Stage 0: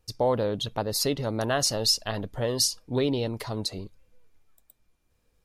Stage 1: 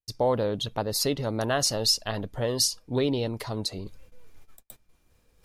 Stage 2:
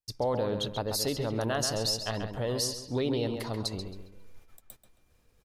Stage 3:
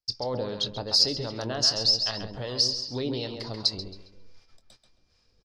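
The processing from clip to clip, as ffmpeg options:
-af "agate=range=0.0316:threshold=0.00126:ratio=16:detection=peak,areverse,acompressor=mode=upward:threshold=0.02:ratio=2.5,areverse"
-filter_complex "[0:a]alimiter=limit=0.133:level=0:latency=1:release=70,asplit=2[s0][s1];[s1]adelay=135,lowpass=f=4000:p=1,volume=0.473,asplit=2[s2][s3];[s3]adelay=135,lowpass=f=4000:p=1,volume=0.36,asplit=2[s4][s5];[s5]adelay=135,lowpass=f=4000:p=1,volume=0.36,asplit=2[s6][s7];[s7]adelay=135,lowpass=f=4000:p=1,volume=0.36[s8];[s2][s4][s6][s8]amix=inputs=4:normalize=0[s9];[s0][s9]amix=inputs=2:normalize=0,volume=0.75"
-filter_complex "[0:a]acrossover=split=690[s0][s1];[s0]aeval=exprs='val(0)*(1-0.5/2+0.5/2*cos(2*PI*2.6*n/s))':c=same[s2];[s1]aeval=exprs='val(0)*(1-0.5/2-0.5/2*cos(2*PI*2.6*n/s))':c=same[s3];[s2][s3]amix=inputs=2:normalize=0,lowpass=f=5000:t=q:w=6.5,asplit=2[s4][s5];[s5]adelay=24,volume=0.2[s6];[s4][s6]amix=inputs=2:normalize=0"

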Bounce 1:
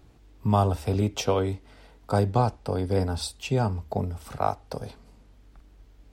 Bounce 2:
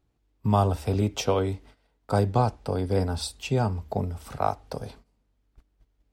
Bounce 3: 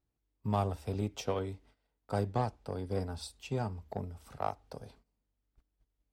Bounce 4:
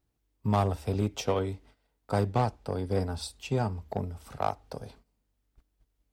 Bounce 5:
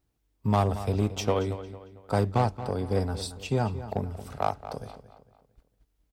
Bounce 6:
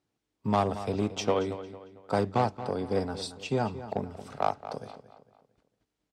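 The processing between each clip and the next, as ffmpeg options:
-af "agate=range=0.141:threshold=0.00447:ratio=16:detection=peak"
-af "aeval=exprs='0.376*(cos(1*acos(clip(val(0)/0.376,-1,1)))-cos(1*PI/2))+0.0168*(cos(7*acos(clip(val(0)/0.376,-1,1)))-cos(7*PI/2))':c=same,volume=0.355"
-af "asoftclip=type=hard:threshold=0.0708,volume=2"
-filter_complex "[0:a]asplit=2[s0][s1];[s1]adelay=226,lowpass=f=4300:p=1,volume=0.224,asplit=2[s2][s3];[s3]adelay=226,lowpass=f=4300:p=1,volume=0.41,asplit=2[s4][s5];[s5]adelay=226,lowpass=f=4300:p=1,volume=0.41,asplit=2[s6][s7];[s7]adelay=226,lowpass=f=4300:p=1,volume=0.41[s8];[s0][s2][s4][s6][s8]amix=inputs=5:normalize=0,volume=1.26"
-af "highpass=160,lowpass=7400"

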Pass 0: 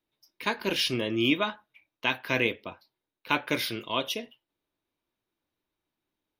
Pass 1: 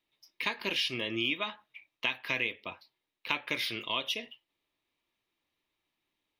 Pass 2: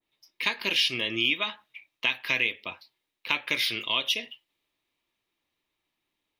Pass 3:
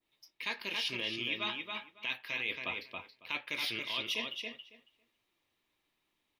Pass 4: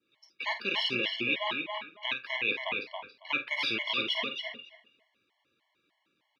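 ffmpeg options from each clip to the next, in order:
-af "equalizer=f=2500:t=o:w=2.3:g=10.5,bandreject=f=1500:w=6.4,acompressor=threshold=0.0398:ratio=3,volume=0.708"
-af "adynamicequalizer=threshold=0.00631:dfrequency=1700:dqfactor=0.7:tfrequency=1700:tqfactor=0.7:attack=5:release=100:ratio=0.375:range=3:mode=boostabove:tftype=highshelf,volume=1.19"
-filter_complex "[0:a]areverse,acompressor=threshold=0.0224:ratio=10,areverse,asplit=2[s0][s1];[s1]adelay=276,lowpass=f=3600:p=1,volume=0.668,asplit=2[s2][s3];[s3]adelay=276,lowpass=f=3600:p=1,volume=0.16,asplit=2[s4][s5];[s5]adelay=276,lowpass=f=3600:p=1,volume=0.16[s6];[s0][s2][s4][s6]amix=inputs=4:normalize=0"
-filter_complex "[0:a]highpass=140,lowpass=4100,asplit=2[s0][s1];[s1]adelay=49,volume=0.299[s2];[s0][s2]amix=inputs=2:normalize=0,afftfilt=real='re*gt(sin(2*PI*3.3*pts/sr)*(1-2*mod(floor(b*sr/1024/570),2)),0)':imag='im*gt(sin(2*PI*3.3*pts/sr)*(1-2*mod(floor(b*sr/1024/570),2)),0)':win_size=1024:overlap=0.75,volume=2.82"

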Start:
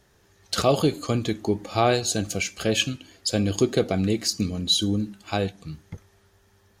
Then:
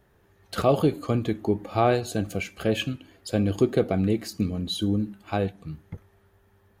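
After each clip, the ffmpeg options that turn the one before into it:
-af "equalizer=f=5900:w=0.73:g=-15"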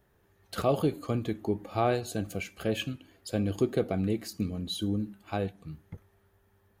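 -af "highshelf=f=9600:g=5.5,volume=0.531"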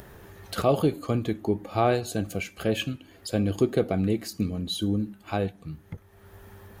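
-af "acompressor=mode=upward:threshold=0.0141:ratio=2.5,volume=1.58"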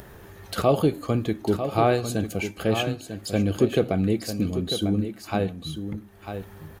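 -af "aecho=1:1:947:0.355,volume=1.26"

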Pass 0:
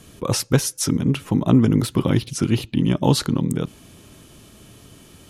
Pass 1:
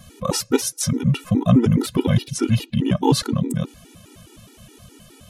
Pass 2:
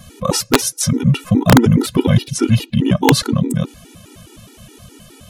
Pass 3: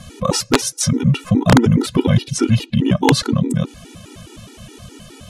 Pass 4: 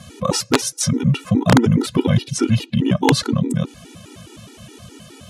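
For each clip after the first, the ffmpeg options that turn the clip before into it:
-af "afftfilt=real='re*gt(sin(2*PI*4.8*pts/sr)*(1-2*mod(floor(b*sr/1024/250),2)),0)':imag='im*gt(sin(2*PI*4.8*pts/sr)*(1-2*mod(floor(b*sr/1024/250),2)),0)':win_size=1024:overlap=0.75,volume=1.5"
-af "aeval=exprs='(mod(2*val(0)+1,2)-1)/2':c=same,volume=1.78"
-filter_complex "[0:a]lowpass=9000,asplit=2[s0][s1];[s1]acompressor=threshold=0.0794:ratio=6,volume=1.12[s2];[s0][s2]amix=inputs=2:normalize=0,volume=0.668"
-af "highpass=75,volume=0.841"

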